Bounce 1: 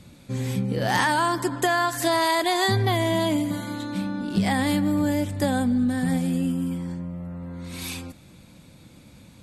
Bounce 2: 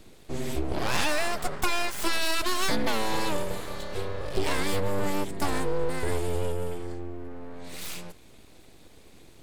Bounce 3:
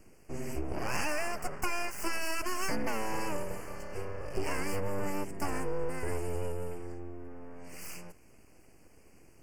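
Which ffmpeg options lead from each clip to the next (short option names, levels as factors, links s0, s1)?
-af "bandreject=f=1100:w=6.3,aeval=exprs='abs(val(0))':c=same,volume=0.891"
-af "asuperstop=centerf=3700:order=8:qfactor=2.1,volume=0.501"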